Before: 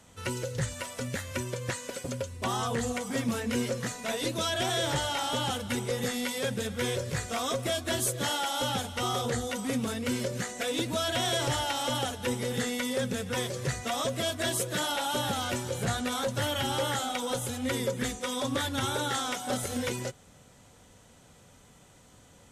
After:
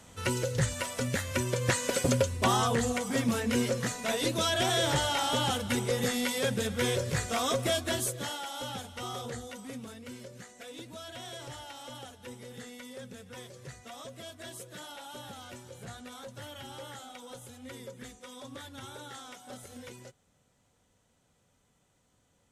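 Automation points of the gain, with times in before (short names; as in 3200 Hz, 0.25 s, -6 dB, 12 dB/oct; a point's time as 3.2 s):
1.39 s +3 dB
2.06 s +9.5 dB
2.86 s +1.5 dB
7.75 s +1.5 dB
8.39 s -8 dB
9.24 s -8 dB
10.16 s -14.5 dB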